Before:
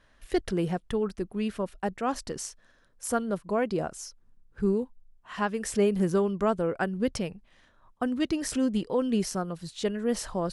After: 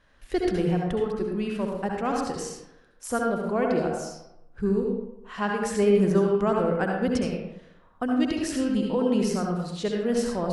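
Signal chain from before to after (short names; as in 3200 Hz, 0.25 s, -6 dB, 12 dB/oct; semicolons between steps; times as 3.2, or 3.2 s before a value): high shelf 9500 Hz -7 dB; reverb RT60 0.85 s, pre-delay 62 ms, DRR -0.5 dB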